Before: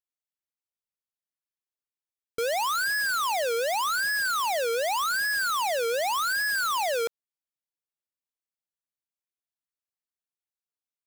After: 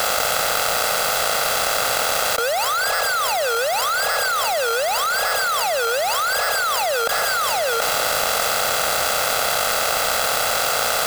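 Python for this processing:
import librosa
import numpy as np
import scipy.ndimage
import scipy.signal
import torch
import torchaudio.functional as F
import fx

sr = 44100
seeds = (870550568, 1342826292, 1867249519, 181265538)

p1 = fx.bin_compress(x, sr, power=0.4)
p2 = scipy.signal.sosfilt(scipy.signal.butter(2, 45.0, 'highpass', fs=sr, output='sos'), p1)
p3 = p2 + 0.7 * np.pad(p2, (int(1.5 * sr / 1000.0), 0))[:len(p2)]
p4 = fx.leveller(p3, sr, passes=2)
p5 = p4 + fx.echo_single(p4, sr, ms=729, db=-20.5, dry=0)
p6 = fx.env_flatten(p5, sr, amount_pct=100)
y = p6 * librosa.db_to_amplitude(-7.0)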